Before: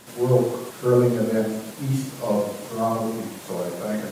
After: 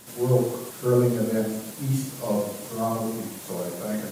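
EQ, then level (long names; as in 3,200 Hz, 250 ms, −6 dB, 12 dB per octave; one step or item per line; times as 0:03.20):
low-shelf EQ 270 Hz +4.5 dB
high-shelf EQ 5,900 Hz +10 dB
−4.5 dB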